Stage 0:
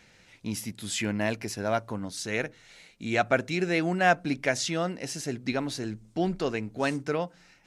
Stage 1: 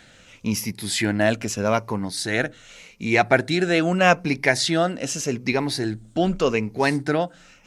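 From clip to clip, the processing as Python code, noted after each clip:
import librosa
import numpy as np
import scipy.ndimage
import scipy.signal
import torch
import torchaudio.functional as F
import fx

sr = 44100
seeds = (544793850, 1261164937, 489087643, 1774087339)

y = fx.spec_ripple(x, sr, per_octave=0.82, drift_hz=-0.83, depth_db=8)
y = y * librosa.db_to_amplitude(7.0)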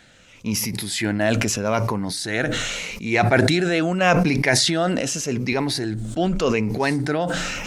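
y = fx.sustainer(x, sr, db_per_s=22.0)
y = y * librosa.db_to_amplitude(-1.5)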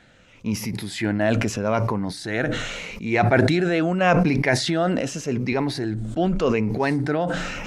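y = fx.high_shelf(x, sr, hz=3500.0, db=-11.5)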